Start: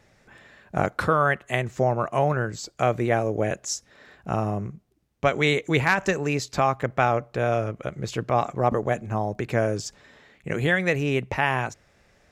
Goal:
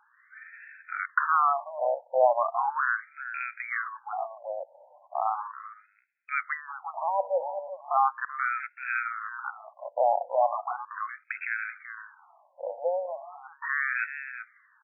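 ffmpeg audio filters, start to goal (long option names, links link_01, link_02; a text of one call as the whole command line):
ffmpeg -i in.wav -af "equalizer=frequency=110:width=1.6:gain=-13,alimiter=limit=-15.5dB:level=0:latency=1:release=20,atempo=0.83,aecho=1:1:383:0.299,afftfilt=real='re*between(b*sr/1024,680*pow(1900/680,0.5+0.5*sin(2*PI*0.37*pts/sr))/1.41,680*pow(1900/680,0.5+0.5*sin(2*PI*0.37*pts/sr))*1.41)':imag='im*between(b*sr/1024,680*pow(1900/680,0.5+0.5*sin(2*PI*0.37*pts/sr))/1.41,680*pow(1900/680,0.5+0.5*sin(2*PI*0.37*pts/sr))*1.41)':win_size=1024:overlap=0.75,volume=5.5dB" out.wav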